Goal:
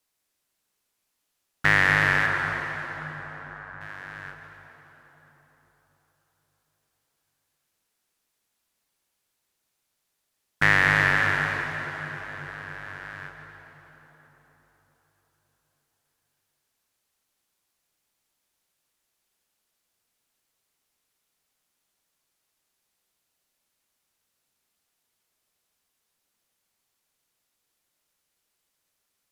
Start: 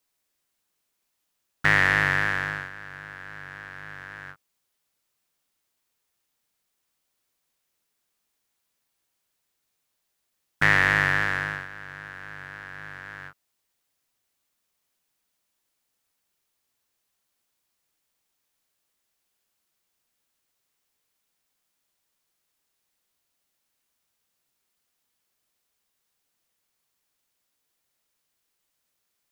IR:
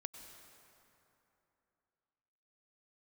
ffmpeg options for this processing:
-filter_complex "[0:a]asettb=1/sr,asplit=3[a][b][c];[a]atrim=end=2.264[d];[b]atrim=start=2.26:end=3.81,asetpts=PTS-STARTPTS,afade=t=in:d=0.004:c=qsin,afade=t=out:st=1.546:d=0.004:c=qsin,asuperpass=centerf=1000:order=4:qfactor=1[e];[c]atrim=start=3.806[f];[d][e]acrossfade=d=0.004:c1=hsin:c2=qsin[g];[g][f]acrossfade=d=0.004:c1=qsin:c2=hsin[h];[1:a]atrim=start_sample=2205,asetrate=26901,aresample=44100[i];[h][i]afir=irnorm=-1:irlink=0,volume=2dB"

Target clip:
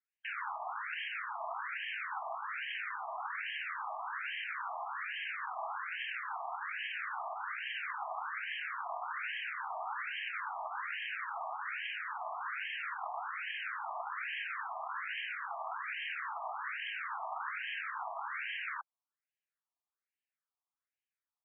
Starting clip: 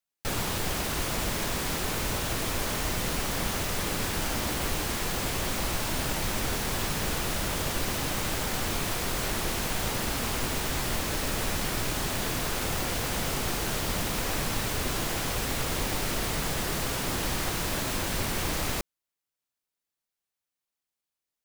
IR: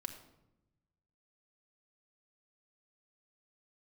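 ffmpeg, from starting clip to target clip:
-af "afftfilt=real='re*between(b*sr/1024,870*pow(2300/870,0.5+0.5*sin(2*PI*1.2*pts/sr))/1.41,870*pow(2300/870,0.5+0.5*sin(2*PI*1.2*pts/sr))*1.41)':imag='im*between(b*sr/1024,870*pow(2300/870,0.5+0.5*sin(2*PI*1.2*pts/sr))/1.41,870*pow(2300/870,0.5+0.5*sin(2*PI*1.2*pts/sr))*1.41)':win_size=1024:overlap=0.75"

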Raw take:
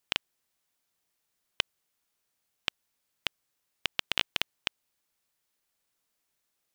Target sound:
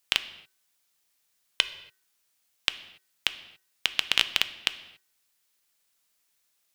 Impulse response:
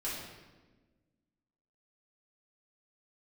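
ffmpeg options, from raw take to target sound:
-filter_complex "[0:a]tiltshelf=f=1.3k:g=-4.5,bandreject=f=378.6:t=h:w=4,bandreject=f=757.2:t=h:w=4,bandreject=f=1.1358k:t=h:w=4,bandreject=f=1.5144k:t=h:w=4,bandreject=f=1.893k:t=h:w=4,asplit=2[a][b];[1:a]atrim=start_sample=2205,afade=t=out:st=0.34:d=0.01,atrim=end_sample=15435[c];[b][c]afir=irnorm=-1:irlink=0,volume=-13.5dB[d];[a][d]amix=inputs=2:normalize=0,volume=2dB"

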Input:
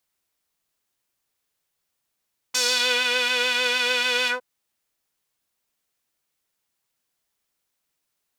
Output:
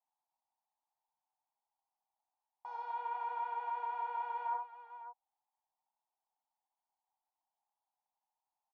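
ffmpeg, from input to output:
-af "acontrast=43,aresample=16000,asoftclip=type=hard:threshold=-12dB,aresample=44100,asetrate=42336,aresample=44100,asuperpass=centerf=840:order=4:qfactor=4.1,aecho=1:1:62|401|548:0.596|0.133|0.266,volume=-2.5dB"

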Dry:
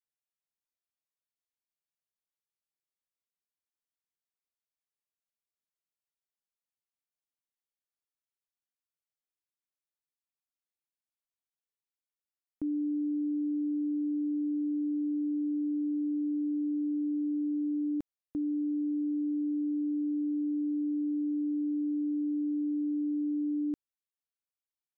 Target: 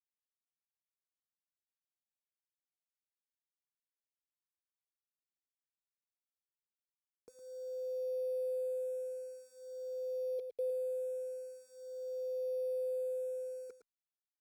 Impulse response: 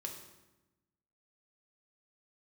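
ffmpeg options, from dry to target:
-filter_complex "[0:a]highpass=f=61:p=1,lowshelf=f=84:g=-7,bandreject=f=410:w=12,asoftclip=type=tanh:threshold=-27.5dB,asplit=3[a][b][c];[a]bandpass=f=270:t=q:w=8,volume=0dB[d];[b]bandpass=f=2.29k:t=q:w=8,volume=-6dB[e];[c]bandpass=f=3.01k:t=q:w=8,volume=-9dB[f];[d][e][f]amix=inputs=3:normalize=0,aeval=exprs='val(0)*gte(abs(val(0)),0.00224)':c=same,aecho=1:1:191:0.376,asetrate=76440,aresample=44100,asplit=2[g][h];[h]afreqshift=-0.46[i];[g][i]amix=inputs=2:normalize=1,volume=3.5dB"

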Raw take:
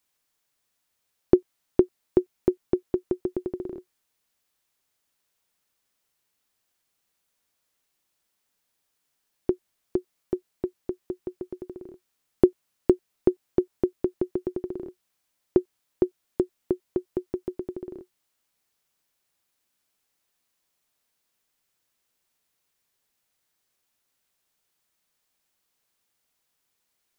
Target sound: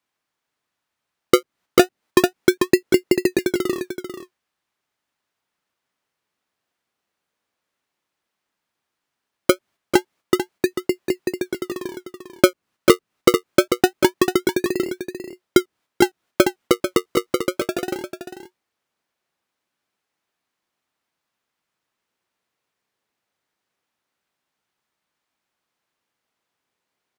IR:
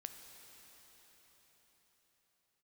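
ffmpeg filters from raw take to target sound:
-filter_complex "[0:a]highpass=f=190:p=1,agate=range=-7dB:threshold=-56dB:ratio=16:detection=peak,lowpass=f=1.6k:p=1,acrossover=split=500[a][b];[a]acrusher=samples=36:mix=1:aa=0.000001:lfo=1:lforange=36:lforate=0.25[c];[b]acompressor=threshold=-43dB:ratio=6[d];[c][d]amix=inputs=2:normalize=0,aecho=1:1:443:0.355,alimiter=level_in=13.5dB:limit=-1dB:release=50:level=0:latency=1,volume=-1dB"

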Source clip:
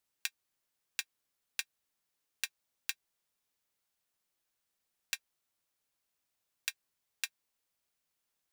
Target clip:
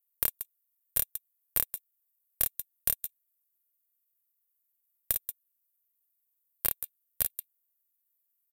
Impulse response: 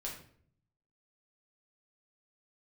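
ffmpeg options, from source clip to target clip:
-af "bandreject=f=1.6k:w=22,afwtdn=0.00355,highpass=f=850:p=1,equalizer=f=9.2k:t=o:w=0.22:g=13.5,alimiter=limit=-21.5dB:level=0:latency=1:release=83,aexciter=amount=8.1:drive=6:freq=5.2k,aecho=1:1:40.82|177.8:0.631|0.398,asetrate=66075,aresample=44100,atempo=0.66742,aeval=exprs='0.596*(cos(1*acos(clip(val(0)/0.596,-1,1)))-cos(1*PI/2))+0.237*(cos(2*acos(clip(val(0)/0.596,-1,1)))-cos(2*PI/2))':c=same,volume=-1dB"

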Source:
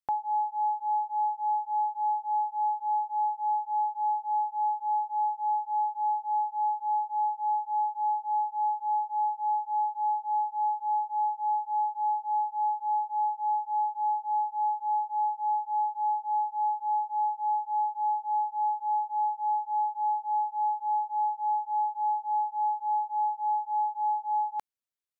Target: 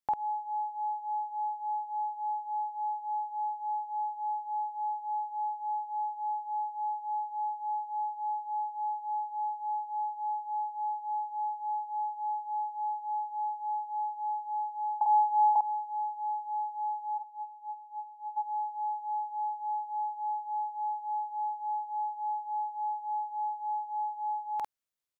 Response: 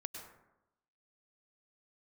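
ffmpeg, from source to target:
-filter_complex "[0:a]asettb=1/sr,asplit=3[a][b][c];[a]atrim=end=15.014[d];[b]atrim=start=15.01:end=15.56,asetpts=PTS-STARTPTS,afade=t=in:d=0.004:c=qsin,afade=t=out:st=0.546:d=0.004:c=qsin,equalizer=f=830:w=0.39:g=9.5[e];[c]atrim=start=15.556[f];[d][e]acrossfade=d=0.004:c1=hsin:c2=qsin[g];[g][f]acrossfade=d=0.004:c1=qsin:c2=hsin,asplit=3[h][i][j];[h]afade=t=out:st=17.17:d=0.02[k];[i]acompressor=threshold=-35dB:ratio=10,afade=t=in:st=17.17:d=0.02,afade=t=out:st=18.36:d=0.02[l];[j]afade=t=in:st=18.36:d=0.02[m];[k][l][m]amix=inputs=3:normalize=0,asplit=2[n][o];[o]adelay=49,volume=-2.5dB[p];[n][p]amix=inputs=2:normalize=0"

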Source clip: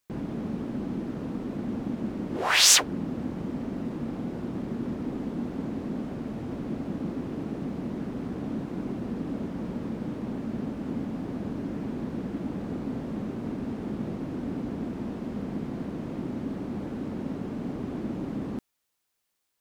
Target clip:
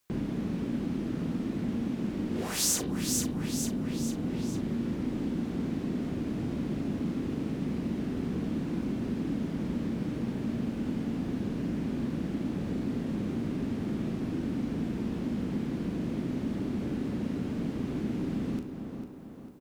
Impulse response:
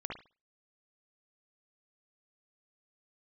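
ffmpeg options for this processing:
-filter_complex "[0:a]asplit=2[a][b];[b]adelay=39,volume=-9dB[c];[a][c]amix=inputs=2:normalize=0,aecho=1:1:448|896|1344|1792:0.282|0.121|0.0521|0.0224,asplit=2[d][e];[1:a]atrim=start_sample=2205[f];[e][f]afir=irnorm=-1:irlink=0,volume=-6.5dB[g];[d][g]amix=inputs=2:normalize=0,acrossover=split=400|1700|6400[h][i][j][k];[h]acompressor=threshold=-30dB:ratio=4[l];[i]acompressor=threshold=-50dB:ratio=4[m];[j]acompressor=threshold=-50dB:ratio=4[n];[k]acompressor=threshold=-28dB:ratio=4[o];[l][m][n][o]amix=inputs=4:normalize=0,volume=1dB"

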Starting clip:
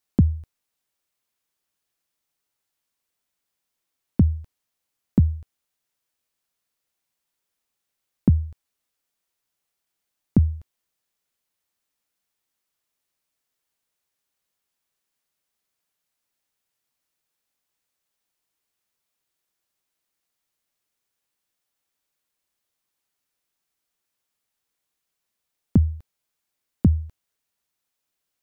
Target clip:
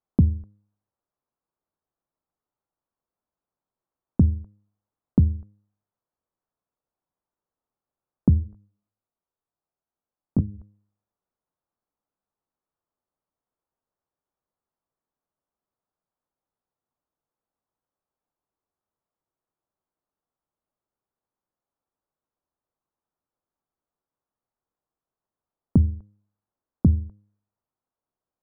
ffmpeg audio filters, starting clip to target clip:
-filter_complex "[0:a]lowpass=f=1.2k:w=0.5412,lowpass=f=1.2k:w=1.3066,bandreject=f=102.7:t=h:w=4,bandreject=f=205.4:t=h:w=4,bandreject=f=308.1:t=h:w=4,bandreject=f=410.8:t=h:w=4,bandreject=f=513.5:t=h:w=4,asplit=3[a][b][c];[a]afade=t=out:st=8.37:d=0.02[d];[b]flanger=delay=18.5:depth=5.3:speed=2.1,afade=t=in:st=8.37:d=0.02,afade=t=out:st=10.59:d=0.02[e];[c]afade=t=in:st=10.59:d=0.02[f];[d][e][f]amix=inputs=3:normalize=0"

